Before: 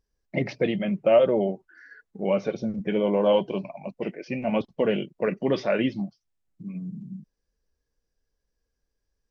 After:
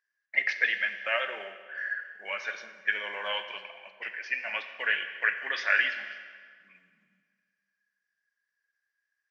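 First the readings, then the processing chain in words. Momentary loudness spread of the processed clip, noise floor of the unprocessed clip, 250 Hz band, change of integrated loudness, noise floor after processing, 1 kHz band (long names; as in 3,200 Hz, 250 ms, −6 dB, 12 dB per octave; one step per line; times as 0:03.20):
15 LU, −81 dBFS, below −30 dB, −4.0 dB, −84 dBFS, −5.0 dB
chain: high-pass with resonance 1,700 Hz, resonance Q 7.6
four-comb reverb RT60 1.9 s, combs from 31 ms, DRR 8.5 dB
one half of a high-frequency compander decoder only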